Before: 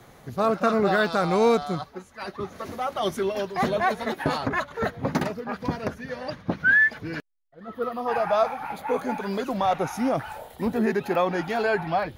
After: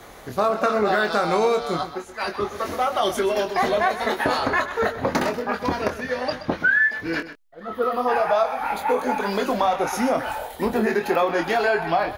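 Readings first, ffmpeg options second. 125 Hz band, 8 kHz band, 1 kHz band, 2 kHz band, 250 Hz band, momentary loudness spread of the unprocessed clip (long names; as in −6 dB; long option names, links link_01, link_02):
−3.0 dB, +6.5 dB, +4.5 dB, +2.0 dB, +0.5 dB, 14 LU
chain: -filter_complex "[0:a]equalizer=frequency=140:width_type=o:width=1.3:gain=-12.5,asplit=2[link_01][link_02];[link_02]adelay=24,volume=-6dB[link_03];[link_01][link_03]amix=inputs=2:normalize=0,acompressor=threshold=-26dB:ratio=4,asplit=2[link_04][link_05];[link_05]aecho=0:1:127:0.224[link_06];[link_04][link_06]amix=inputs=2:normalize=0,volume=8dB"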